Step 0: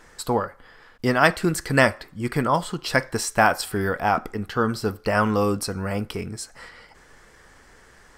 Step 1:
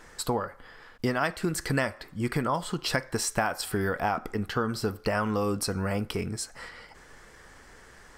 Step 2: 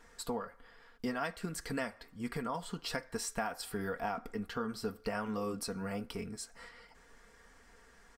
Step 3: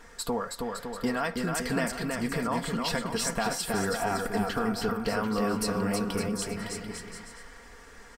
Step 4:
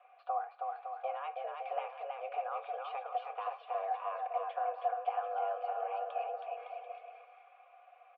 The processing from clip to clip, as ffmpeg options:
ffmpeg -i in.wav -af "acompressor=threshold=-24dB:ratio=5" out.wav
ffmpeg -i in.wav -af "aecho=1:1:4.3:0.54,flanger=delay=0.8:depth=4.7:regen=-79:speed=1.3:shape=triangular,volume=-6dB" out.wav
ffmpeg -i in.wav -filter_complex "[0:a]asplit=2[link_01][link_02];[link_02]alimiter=level_in=7.5dB:limit=-24dB:level=0:latency=1,volume=-7.5dB,volume=1.5dB[link_03];[link_01][link_03]amix=inputs=2:normalize=0,aecho=1:1:320|560|740|875|976.2:0.631|0.398|0.251|0.158|0.1,volume=2dB" out.wav
ffmpeg -i in.wav -filter_complex "[0:a]highpass=frequency=180:width_type=q:width=0.5412,highpass=frequency=180:width_type=q:width=1.307,lowpass=frequency=3100:width_type=q:width=0.5176,lowpass=frequency=3100:width_type=q:width=0.7071,lowpass=frequency=3100:width_type=q:width=1.932,afreqshift=280,asplit=3[link_01][link_02][link_03];[link_01]bandpass=frequency=730:width_type=q:width=8,volume=0dB[link_04];[link_02]bandpass=frequency=1090:width_type=q:width=8,volume=-6dB[link_05];[link_03]bandpass=frequency=2440:width_type=q:width=8,volume=-9dB[link_06];[link_04][link_05][link_06]amix=inputs=3:normalize=0" out.wav

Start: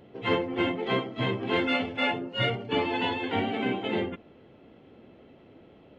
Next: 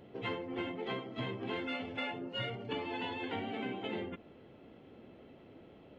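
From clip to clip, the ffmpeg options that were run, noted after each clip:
ffmpeg -i in.wav -af "acompressor=threshold=-33dB:ratio=6,volume=-2.5dB" out.wav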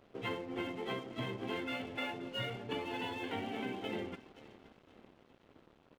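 ffmpeg -i in.wav -af "aecho=1:1:523|1046|1569:0.168|0.0655|0.0255,aeval=exprs='sgn(val(0))*max(abs(val(0))-0.00168,0)':channel_layout=same" out.wav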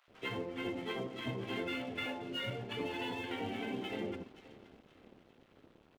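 ffmpeg -i in.wav -filter_complex "[0:a]acrossover=split=950[link_01][link_02];[link_01]adelay=80[link_03];[link_03][link_02]amix=inputs=2:normalize=0,volume=1dB" out.wav

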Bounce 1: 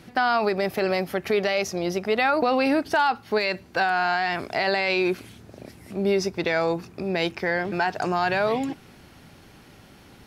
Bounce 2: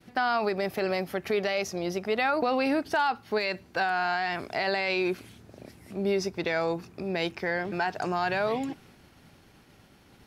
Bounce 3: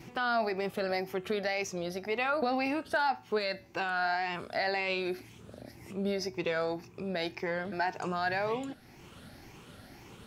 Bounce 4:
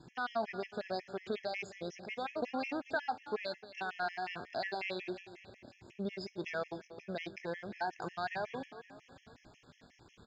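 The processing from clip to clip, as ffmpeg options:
ffmpeg -i in.wav -af "agate=range=-33dB:threshold=-46dB:ratio=3:detection=peak,volume=-4.5dB" out.wav
ffmpeg -i in.wav -af "afftfilt=real='re*pow(10,8/40*sin(2*PI*(0.73*log(max(b,1)*sr/1024/100)/log(2)-(1.9)*(pts-256)/sr)))':imag='im*pow(10,8/40*sin(2*PI*(0.73*log(max(b,1)*sr/1024/100)/log(2)-(1.9)*(pts-256)/sr)))':win_size=1024:overlap=0.75,acompressor=mode=upward:threshold=-36dB:ratio=2.5,flanger=delay=7.9:depth=1:regen=86:speed=0.93:shape=sinusoidal" out.wav
ffmpeg -i in.wav -af "aresample=16000,aeval=exprs='sgn(val(0))*max(abs(val(0))-0.00133,0)':channel_layout=same,aresample=44100,aecho=1:1:262|524|786|1048|1310:0.188|0.0998|0.0529|0.028|0.0149,afftfilt=real='re*gt(sin(2*PI*5.5*pts/sr)*(1-2*mod(floor(b*sr/1024/1700),2)),0)':imag='im*gt(sin(2*PI*5.5*pts/sr)*(1-2*mod(floor(b*sr/1024/1700),2)),0)':win_size=1024:overlap=0.75,volume=-4dB" out.wav

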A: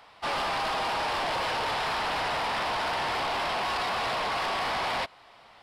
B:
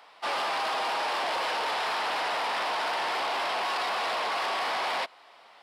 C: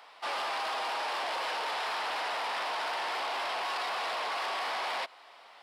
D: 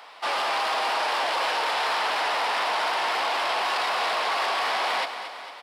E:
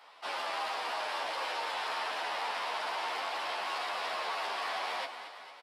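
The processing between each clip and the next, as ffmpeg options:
ffmpeg -i in.wav -af "highpass=340" out.wav
ffmpeg -i in.wav -filter_complex "[0:a]lowshelf=frequency=200:gain=-11,asplit=2[link_01][link_02];[link_02]alimiter=level_in=9.5dB:limit=-24dB:level=0:latency=1:release=57,volume=-9.5dB,volume=2dB[link_03];[link_01][link_03]amix=inputs=2:normalize=0,volume=-6.5dB" out.wav
ffmpeg -i in.wav -af "aecho=1:1:227|454|681|908|1135|1362:0.316|0.177|0.0992|0.0555|0.0311|0.0174,volume=7.5dB" out.wav
ffmpeg -i in.wav -filter_complex "[0:a]aresample=32000,aresample=44100,asplit=2[link_01][link_02];[link_02]adelay=11,afreqshift=-2.8[link_03];[link_01][link_03]amix=inputs=2:normalize=1,volume=-7dB" out.wav

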